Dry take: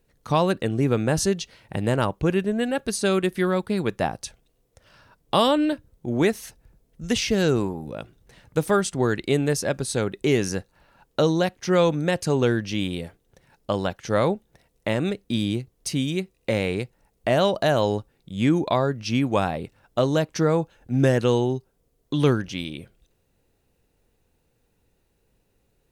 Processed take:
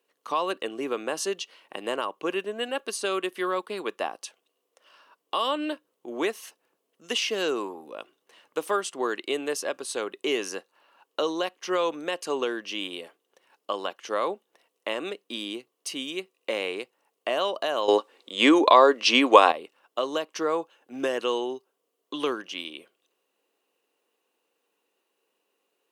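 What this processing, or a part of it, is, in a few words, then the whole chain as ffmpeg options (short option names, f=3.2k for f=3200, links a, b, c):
laptop speaker: -filter_complex "[0:a]highpass=f=320:w=0.5412,highpass=f=320:w=1.3066,equalizer=f=1.1k:t=o:w=0.28:g=10,equalizer=f=2.9k:t=o:w=0.29:g=9,alimiter=limit=-11dB:level=0:latency=1:release=188,asettb=1/sr,asplit=3[a][b][c];[a]atrim=end=17.884[d];[b]atrim=start=17.88:end=19.52,asetpts=PTS-STARTPTS,afade=t=in:d=0.004:c=qsin,afade=t=out:st=1.636:d=0.004:c=qsin,equalizer=f=125:t=o:w=1:g=-10,equalizer=f=250:t=o:w=1:g=10,equalizer=f=500:t=o:w=1:g=11,equalizer=f=1k:t=o:w=1:g=9,equalizer=f=2k:t=o:w=1:g=9,equalizer=f=4k:t=o:w=1:g=11,equalizer=f=8k:t=o:w=1:g=9[e];[c]atrim=start=19.516[f];[d][e]acrossfade=d=0.004:c1=hsin:c2=qsin[g];[g][f]acrossfade=d=0.004:c1=qsin:c2=hsin,volume=-4.5dB"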